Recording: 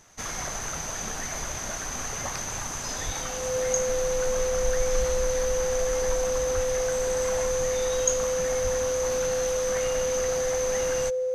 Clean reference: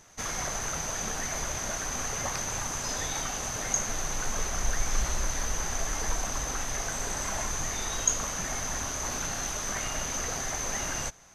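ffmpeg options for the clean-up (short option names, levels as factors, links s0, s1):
-filter_complex "[0:a]bandreject=f=510:w=30,asplit=3[s0][s1][s2];[s0]afade=t=out:st=3.05:d=0.02[s3];[s1]highpass=f=140:w=0.5412,highpass=f=140:w=1.3066,afade=t=in:st=3.05:d=0.02,afade=t=out:st=3.17:d=0.02[s4];[s2]afade=t=in:st=3.17:d=0.02[s5];[s3][s4][s5]amix=inputs=3:normalize=0,asplit=3[s6][s7][s8];[s6]afade=t=out:st=6.54:d=0.02[s9];[s7]highpass=f=140:w=0.5412,highpass=f=140:w=1.3066,afade=t=in:st=6.54:d=0.02,afade=t=out:st=6.66:d=0.02[s10];[s8]afade=t=in:st=6.66:d=0.02[s11];[s9][s10][s11]amix=inputs=3:normalize=0,asplit=3[s12][s13][s14];[s12]afade=t=out:st=8.63:d=0.02[s15];[s13]highpass=f=140:w=0.5412,highpass=f=140:w=1.3066,afade=t=in:st=8.63:d=0.02,afade=t=out:st=8.75:d=0.02[s16];[s14]afade=t=in:st=8.75:d=0.02[s17];[s15][s16][s17]amix=inputs=3:normalize=0"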